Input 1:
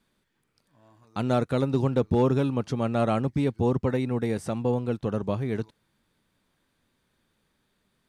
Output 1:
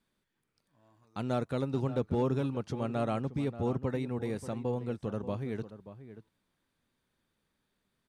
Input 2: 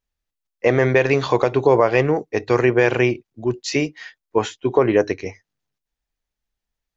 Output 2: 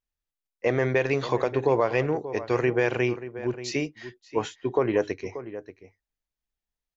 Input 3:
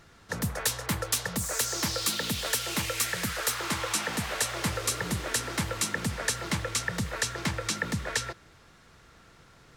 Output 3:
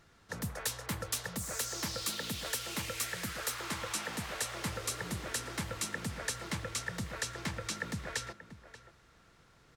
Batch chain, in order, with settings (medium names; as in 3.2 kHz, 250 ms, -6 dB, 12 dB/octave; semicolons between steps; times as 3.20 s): echo from a far wall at 100 m, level -13 dB; trim -7.5 dB